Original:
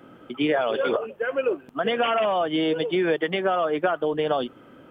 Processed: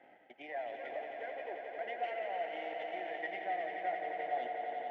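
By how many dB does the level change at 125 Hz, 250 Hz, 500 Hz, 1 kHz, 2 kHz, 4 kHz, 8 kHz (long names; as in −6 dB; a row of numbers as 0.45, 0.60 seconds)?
below −30 dB, −27.0 dB, −16.5 dB, −10.0 dB, −12.5 dB, −22.0 dB, can't be measured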